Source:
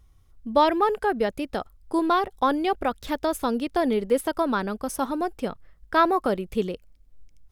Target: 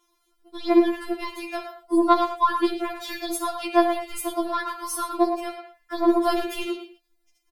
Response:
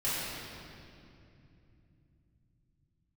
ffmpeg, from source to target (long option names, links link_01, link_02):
-filter_complex "[0:a]highpass=frequency=470:poles=1,aeval=exprs='0.398*(cos(1*acos(clip(val(0)/0.398,-1,1)))-cos(1*PI/2))+0.00447*(cos(6*acos(clip(val(0)/0.398,-1,1)))-cos(6*PI/2))':channel_layout=same,alimiter=limit=-19.5dB:level=0:latency=1:release=22,asettb=1/sr,asplit=3[link_01][link_02][link_03];[link_01]atrim=end=6.204[link_04];[link_02]atrim=start=6.2:end=6.63,asetpts=PTS-STARTPTS,afade=type=in:duration=0.004:curve=qsin,afade=type=out:start_time=0.426:duration=0.004:curve=qsin,acontrast=90[link_05];[link_03]atrim=start=6.626[link_06];[link_04][link_05]acrossfade=duration=0.004:curve1=hsin:curve2=qsin[link_07];[link_07][link_06]acrossfade=duration=0.004:curve1=qsin:curve2=hsin,asplit=2[link_08][link_09];[link_09]adelay=110,highpass=300,lowpass=3400,asoftclip=type=hard:threshold=-21dB,volume=-6dB[link_10];[link_08][link_10]amix=inputs=2:normalize=0,asplit=2[link_11][link_12];[1:a]atrim=start_sample=2205,afade=type=out:start_time=0.15:duration=0.01,atrim=end_sample=7056,asetrate=37044,aresample=44100[link_13];[link_12][link_13]afir=irnorm=-1:irlink=0,volume=-11.5dB[link_14];[link_11][link_14]amix=inputs=2:normalize=0,afftfilt=real='re*4*eq(mod(b,16),0)':imag='im*4*eq(mod(b,16),0)':win_size=2048:overlap=0.75,volume=5dB"